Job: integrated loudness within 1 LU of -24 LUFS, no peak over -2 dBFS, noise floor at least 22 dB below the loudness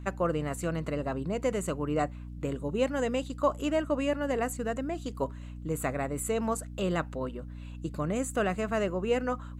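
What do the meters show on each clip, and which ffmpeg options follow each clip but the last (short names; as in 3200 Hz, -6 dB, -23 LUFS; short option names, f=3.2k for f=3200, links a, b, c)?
hum 60 Hz; harmonics up to 300 Hz; hum level -39 dBFS; loudness -31.5 LUFS; peak -14.0 dBFS; loudness target -24.0 LUFS
-> -af "bandreject=f=60:t=h:w=4,bandreject=f=120:t=h:w=4,bandreject=f=180:t=h:w=4,bandreject=f=240:t=h:w=4,bandreject=f=300:t=h:w=4"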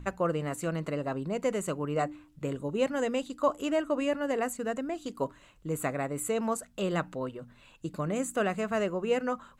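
hum none; loudness -32.0 LUFS; peak -15.0 dBFS; loudness target -24.0 LUFS
-> -af "volume=8dB"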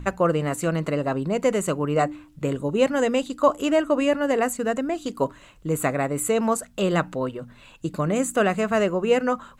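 loudness -24.0 LUFS; peak -7.0 dBFS; noise floor -51 dBFS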